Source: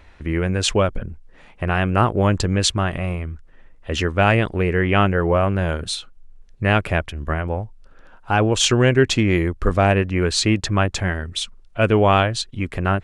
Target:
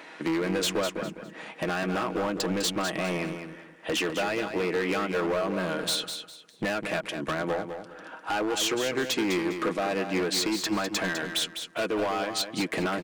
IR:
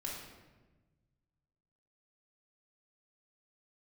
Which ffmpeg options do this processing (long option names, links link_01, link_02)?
-af "highpass=frequency=220:width=0.5412,highpass=frequency=220:width=1.3066,aecho=1:1:6.3:0.44,acompressor=threshold=-29dB:ratio=8,asoftclip=type=hard:threshold=-31.5dB,aecho=1:1:203|406|609:0.398|0.107|0.029,volume=7.5dB"